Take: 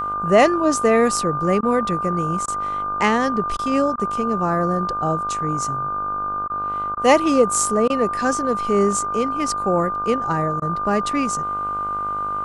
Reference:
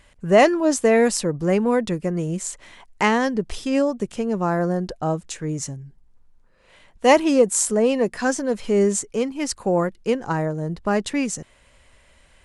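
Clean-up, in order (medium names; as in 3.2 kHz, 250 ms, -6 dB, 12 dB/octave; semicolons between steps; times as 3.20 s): de-hum 50.3 Hz, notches 31; band-stop 1.2 kHz, Q 30; interpolate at 1.61/2.46/3.57/3.96/6.48/6.95/7.88/10.60 s, 18 ms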